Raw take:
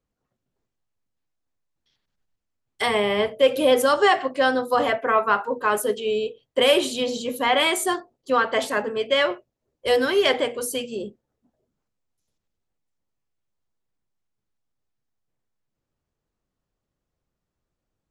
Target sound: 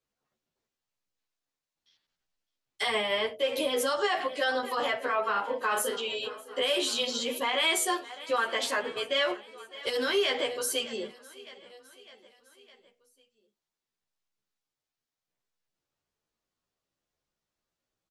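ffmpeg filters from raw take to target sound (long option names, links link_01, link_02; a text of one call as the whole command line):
ffmpeg -i in.wav -filter_complex "[0:a]acrossover=split=5600[link_01][link_02];[link_01]crystalizer=i=3:c=0[link_03];[link_03][link_02]amix=inputs=2:normalize=0,asettb=1/sr,asplit=3[link_04][link_05][link_06];[link_04]atrim=end=5.324[link_07];[link_05]atrim=start=5.32:end=5.96,asetpts=PTS-STARTPTS,afade=type=in:duration=0.004:curve=qsin,afade=type=out:start_time=0.636:duration=0.004:curve=qsin,asplit=2[link_08][link_09];[link_09]adelay=35,volume=-5dB[link_10];[link_08][link_10]amix=inputs=2:normalize=0,atrim=end_sample=28224[link_11];[link_06]atrim=start=5.956[link_12];[link_07][link_11]acrossfade=duration=0.004:curve1=hsin:curve2=qsin[link_13];[link_13][link_12]acrossfade=duration=0.004:curve1=qsin:curve2=hsin,aecho=1:1:607|1214|1821|2428:0.075|0.0435|0.0252|0.0146,alimiter=limit=-15dB:level=0:latency=1:release=65,lowshelf=frequency=230:gain=-11,asplit=2[link_14][link_15];[link_15]adelay=11.9,afreqshift=0.76[link_16];[link_14][link_16]amix=inputs=2:normalize=1" out.wav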